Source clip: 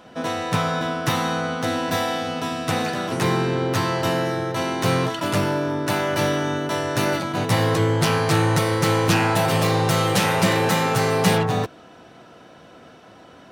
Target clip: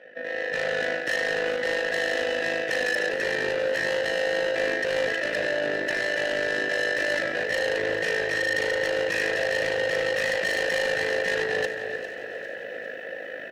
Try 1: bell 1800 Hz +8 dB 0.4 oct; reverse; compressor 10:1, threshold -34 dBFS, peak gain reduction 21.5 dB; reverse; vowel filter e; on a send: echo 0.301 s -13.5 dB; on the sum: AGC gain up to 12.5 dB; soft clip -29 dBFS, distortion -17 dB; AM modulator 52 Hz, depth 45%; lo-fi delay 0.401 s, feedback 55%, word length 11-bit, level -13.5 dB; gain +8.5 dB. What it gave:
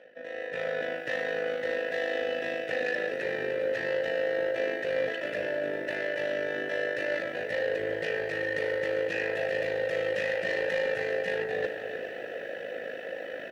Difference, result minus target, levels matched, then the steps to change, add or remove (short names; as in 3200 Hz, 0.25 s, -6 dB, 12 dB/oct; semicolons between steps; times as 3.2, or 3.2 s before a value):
compressor: peak gain reduction +7.5 dB; 2000 Hz band -2.5 dB
change: bell 1800 Hz +14 dB 0.4 oct; change: compressor 10:1, threshold -25 dBFS, peak gain reduction 14.5 dB